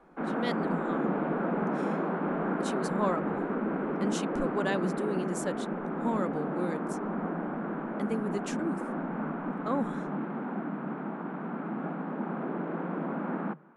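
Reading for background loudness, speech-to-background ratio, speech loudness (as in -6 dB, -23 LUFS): -33.0 LUFS, -2.5 dB, -35.5 LUFS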